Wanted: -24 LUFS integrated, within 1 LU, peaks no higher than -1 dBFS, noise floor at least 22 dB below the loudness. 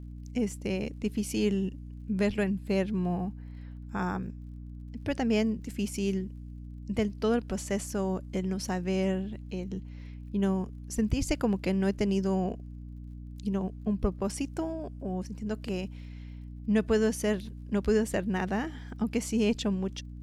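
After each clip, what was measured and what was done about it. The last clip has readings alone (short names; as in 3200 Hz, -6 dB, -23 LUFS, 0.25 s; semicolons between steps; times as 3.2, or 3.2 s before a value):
ticks 27/s; hum 60 Hz; harmonics up to 300 Hz; hum level -40 dBFS; loudness -31.0 LUFS; peak -14.0 dBFS; loudness target -24.0 LUFS
-> de-click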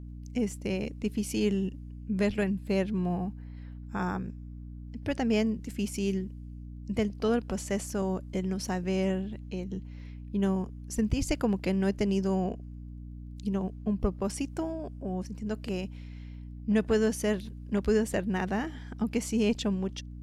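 ticks 0.049/s; hum 60 Hz; harmonics up to 300 Hz; hum level -40 dBFS
-> notches 60/120/180/240/300 Hz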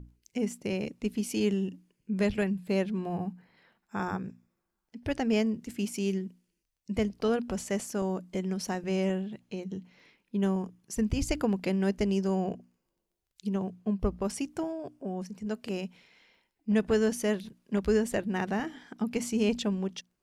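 hum none; loudness -31.5 LUFS; peak -14.5 dBFS; loudness target -24.0 LUFS
-> gain +7.5 dB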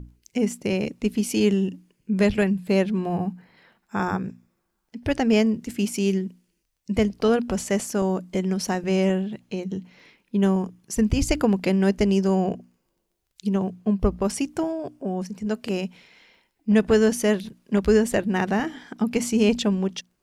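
loudness -24.0 LUFS; peak -7.0 dBFS; noise floor -74 dBFS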